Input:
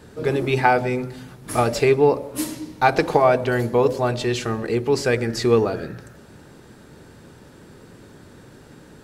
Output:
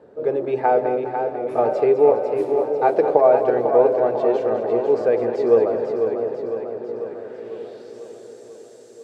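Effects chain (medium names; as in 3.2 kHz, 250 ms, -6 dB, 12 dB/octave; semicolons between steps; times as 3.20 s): band-pass sweep 540 Hz -> 6.9 kHz, 6.69–8.05 s; two-band feedback delay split 570 Hz, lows 688 ms, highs 204 ms, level -10 dB; modulated delay 497 ms, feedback 61%, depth 68 cents, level -7 dB; trim +5 dB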